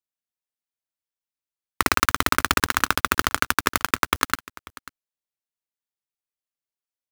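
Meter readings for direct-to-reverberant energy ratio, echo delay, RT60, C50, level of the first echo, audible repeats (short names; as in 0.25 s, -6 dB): none, 0.541 s, none, none, -20.5 dB, 1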